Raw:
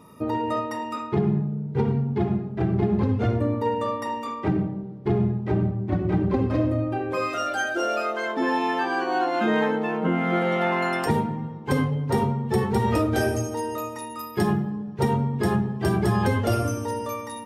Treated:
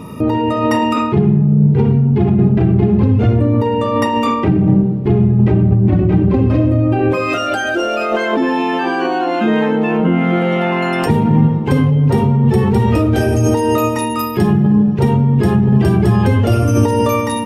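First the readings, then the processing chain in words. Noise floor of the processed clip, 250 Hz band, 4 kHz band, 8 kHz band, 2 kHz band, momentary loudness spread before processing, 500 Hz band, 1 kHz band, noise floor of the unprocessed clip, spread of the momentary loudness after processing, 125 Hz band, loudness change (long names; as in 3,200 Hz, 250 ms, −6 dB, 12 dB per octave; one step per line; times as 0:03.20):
−19 dBFS, +12.0 dB, +9.0 dB, can't be measured, +7.0 dB, 7 LU, +9.0 dB, +7.5 dB, −36 dBFS, 5 LU, +13.0 dB, +11.0 dB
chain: parametric band 2,700 Hz +7 dB 0.53 octaves
in parallel at +3 dB: compressor whose output falls as the input rises −30 dBFS, ratio −0.5
on the sum: low-shelf EQ 420 Hz +10 dB
level +1 dB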